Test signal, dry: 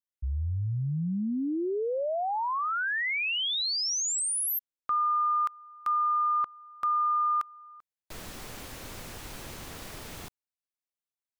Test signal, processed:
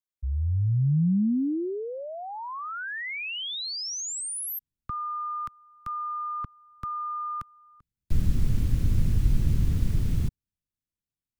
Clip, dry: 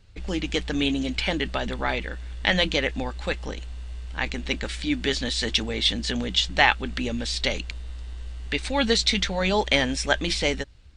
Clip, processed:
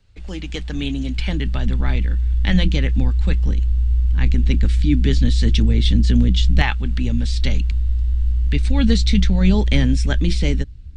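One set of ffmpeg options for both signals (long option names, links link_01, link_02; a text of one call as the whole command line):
ffmpeg -i in.wav -filter_complex "[0:a]asubboost=boost=10:cutoff=230,acrossover=split=200|1200|2900[link_01][link_02][link_03][link_04];[link_01]dynaudnorm=framelen=380:gausssize=7:maxgain=10dB[link_05];[link_05][link_02][link_03][link_04]amix=inputs=4:normalize=0,volume=-3.5dB" out.wav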